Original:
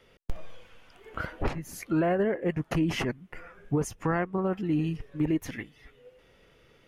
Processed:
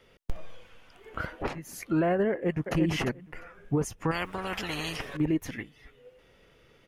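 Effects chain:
0:01.35–0:01.78: low-shelf EQ 130 Hz −12 dB
0:02.31–0:02.74: delay throw 350 ms, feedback 10%, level −4.5 dB
0:04.11–0:05.17: every bin compressed towards the loudest bin 4 to 1

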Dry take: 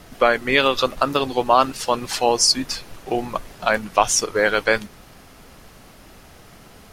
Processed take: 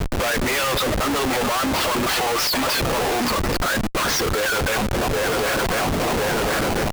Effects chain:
feedback echo with a long and a short gap by turns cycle 1,049 ms, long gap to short 3 to 1, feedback 51%, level −22.5 dB
automatic gain control gain up to 8 dB
on a send at −20 dB: convolution reverb RT60 2.2 s, pre-delay 118 ms
on the sum: reverb reduction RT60 0.56 s
hard clipping −18.5 dBFS, distortion −5 dB
high-pass filter 440 Hz 12 dB per octave
0:03.20–0:04.41: phaser with its sweep stopped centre 2,900 Hz, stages 6
low-pass filter 4,000 Hz 24 dB per octave
comparator with hysteresis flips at −42 dBFS
level +8 dB

